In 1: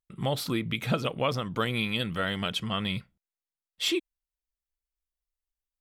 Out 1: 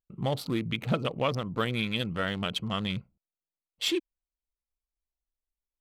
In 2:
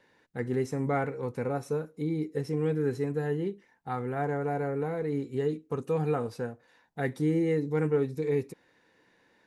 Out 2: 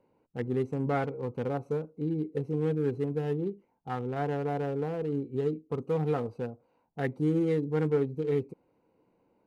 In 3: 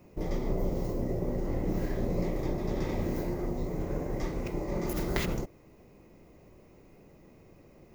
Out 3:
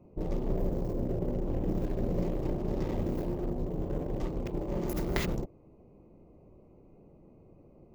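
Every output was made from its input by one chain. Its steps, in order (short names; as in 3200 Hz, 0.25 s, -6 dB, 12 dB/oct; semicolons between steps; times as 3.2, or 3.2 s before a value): Wiener smoothing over 25 samples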